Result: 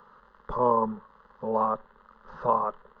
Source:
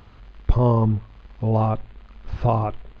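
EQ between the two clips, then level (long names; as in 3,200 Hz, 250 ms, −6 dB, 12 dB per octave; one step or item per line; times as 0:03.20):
three-way crossover with the lows and the highs turned down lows −17 dB, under 530 Hz, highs −17 dB, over 2,100 Hz
low shelf with overshoot 120 Hz −9.5 dB, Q 1.5
phaser with its sweep stopped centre 470 Hz, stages 8
+5.5 dB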